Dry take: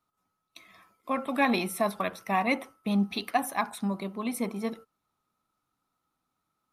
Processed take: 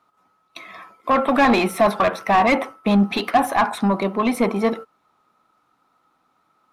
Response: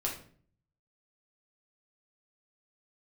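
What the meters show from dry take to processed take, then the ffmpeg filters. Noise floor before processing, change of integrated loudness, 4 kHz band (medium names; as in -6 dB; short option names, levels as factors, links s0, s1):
-82 dBFS, +10.5 dB, +8.5 dB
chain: -filter_complex "[0:a]asplit=2[s0][s1];[s1]highpass=f=720:p=1,volume=11.2,asoftclip=type=tanh:threshold=0.251[s2];[s0][s2]amix=inputs=2:normalize=0,lowpass=f=1100:p=1,volume=0.501,volume=2.24"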